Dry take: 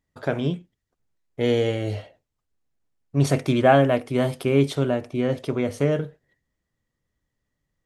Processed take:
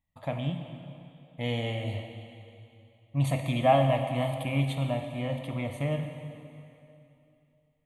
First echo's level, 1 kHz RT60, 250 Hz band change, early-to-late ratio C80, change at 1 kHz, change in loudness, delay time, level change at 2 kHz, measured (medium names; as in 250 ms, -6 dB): no echo, 2.8 s, -9.0 dB, 7.0 dB, -3.5 dB, -7.0 dB, no echo, -7.0 dB